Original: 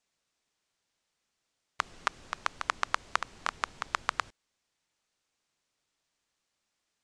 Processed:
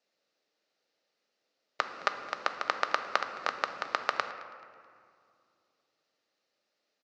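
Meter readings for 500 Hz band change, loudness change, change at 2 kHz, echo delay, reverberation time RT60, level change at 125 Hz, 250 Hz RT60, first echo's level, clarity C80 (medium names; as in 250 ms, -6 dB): +8.5 dB, +1.5 dB, +1.5 dB, 216 ms, 2.3 s, no reading, 3.1 s, -21.0 dB, 10.5 dB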